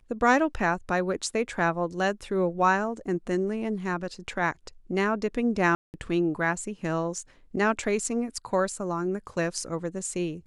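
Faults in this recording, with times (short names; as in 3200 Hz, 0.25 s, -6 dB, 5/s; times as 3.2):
5.75–5.94 gap 0.189 s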